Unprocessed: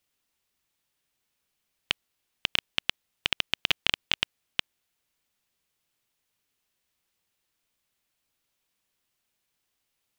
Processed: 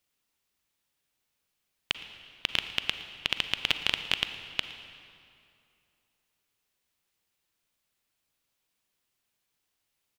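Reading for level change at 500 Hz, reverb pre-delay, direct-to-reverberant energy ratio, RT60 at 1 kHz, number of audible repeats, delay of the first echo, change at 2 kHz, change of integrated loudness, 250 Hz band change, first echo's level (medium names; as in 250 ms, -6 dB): -1.0 dB, 36 ms, 8.5 dB, 2.6 s, 1, 114 ms, -1.0 dB, -1.0 dB, -1.0 dB, -20.0 dB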